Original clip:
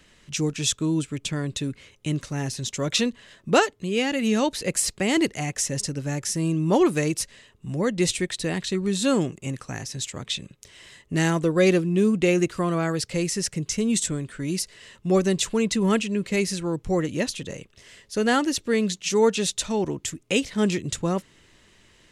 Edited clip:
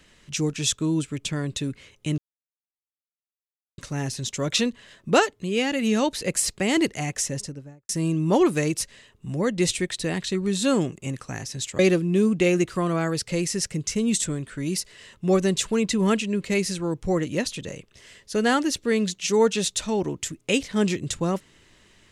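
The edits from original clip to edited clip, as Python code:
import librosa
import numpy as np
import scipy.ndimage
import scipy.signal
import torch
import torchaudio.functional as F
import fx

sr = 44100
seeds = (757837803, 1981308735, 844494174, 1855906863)

y = fx.studio_fade_out(x, sr, start_s=5.57, length_s=0.72)
y = fx.edit(y, sr, fx.insert_silence(at_s=2.18, length_s=1.6),
    fx.cut(start_s=10.19, length_s=1.42), tone=tone)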